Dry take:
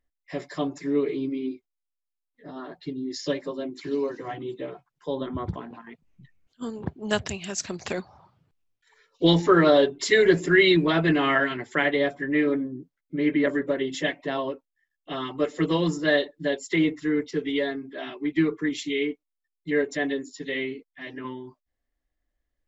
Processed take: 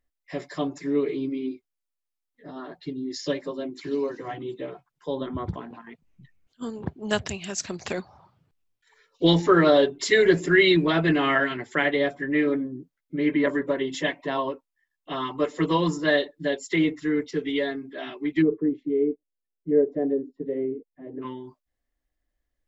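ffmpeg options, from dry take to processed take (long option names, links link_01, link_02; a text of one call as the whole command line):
ffmpeg -i in.wav -filter_complex "[0:a]asettb=1/sr,asplit=3[link_01][link_02][link_03];[link_01]atrim=end=13.294[link_04];[link_02]atrim=start=13.29:end=16.11,asetpts=PTS-STARTPTS,afade=type=in:duration=0.004:curve=qsin,afade=type=out:start_time=2.816:duration=0.004:curve=qsin,equalizer=frequency=1000:width_type=o:width=0.3:gain=8[link_05];[link_03]atrim=start=16.106[link_06];[link_04][link_05]acrossfade=duration=0.004:curve1=hsin:curve2=qsin[link_07];[link_07][link_06]acrossfade=duration=0.004:curve1=qsin:curve2=hsin,asplit=3[link_08][link_09][link_10];[link_08]afade=type=out:start_time=18.41:duration=0.02[link_11];[link_09]lowpass=frequency=480:width_type=q:width=1.7,afade=type=in:start_time=18.41:duration=0.02,afade=type=out:start_time=21.21:duration=0.02[link_12];[link_10]afade=type=in:start_time=21.21:duration=0.02[link_13];[link_11][link_12][link_13]amix=inputs=3:normalize=0" out.wav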